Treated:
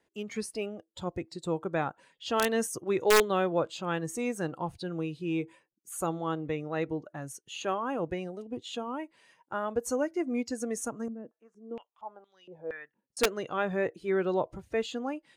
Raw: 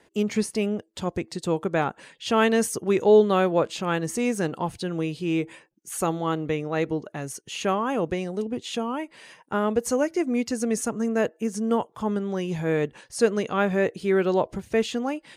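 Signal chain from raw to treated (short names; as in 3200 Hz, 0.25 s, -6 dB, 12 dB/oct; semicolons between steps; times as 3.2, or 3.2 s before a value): wrapped overs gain 9 dB; spectral noise reduction 9 dB; 11.08–13.17 stepped band-pass 4.3 Hz 230–4000 Hz; gain -6 dB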